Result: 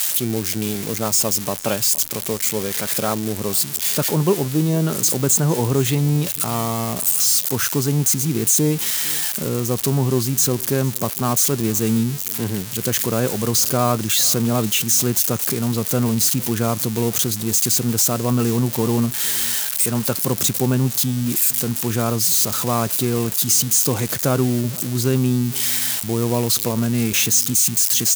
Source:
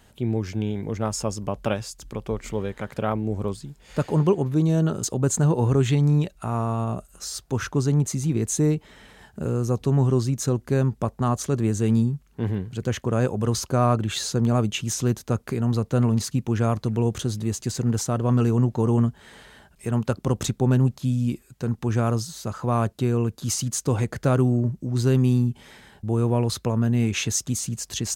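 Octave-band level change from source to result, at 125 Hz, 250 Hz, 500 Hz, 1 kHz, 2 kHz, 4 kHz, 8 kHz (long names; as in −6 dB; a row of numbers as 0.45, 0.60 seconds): −0.5, +2.5, +3.0, +3.5, +7.0, +11.5, +13.5 decibels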